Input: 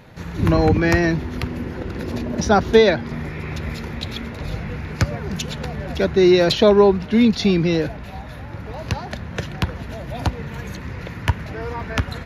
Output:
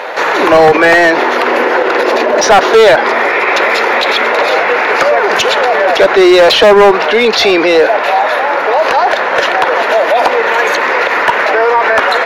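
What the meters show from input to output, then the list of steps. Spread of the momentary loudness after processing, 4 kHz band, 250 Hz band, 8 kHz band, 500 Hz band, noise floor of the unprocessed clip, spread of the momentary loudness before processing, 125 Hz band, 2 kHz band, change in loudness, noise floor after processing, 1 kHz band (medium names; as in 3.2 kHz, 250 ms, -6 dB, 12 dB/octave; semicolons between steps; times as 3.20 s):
5 LU, +13.5 dB, +3.0 dB, +12.5 dB, +12.0 dB, -34 dBFS, 17 LU, under -10 dB, +18.5 dB, +11.5 dB, -14 dBFS, +18.5 dB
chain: high-pass 460 Hz 24 dB/octave; saturation -15 dBFS, distortion -12 dB; overdrive pedal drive 9 dB, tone 1.1 kHz, clips at -15 dBFS; hard clipper -22 dBFS, distortion -14 dB; loudness maximiser +30 dB; trim -1 dB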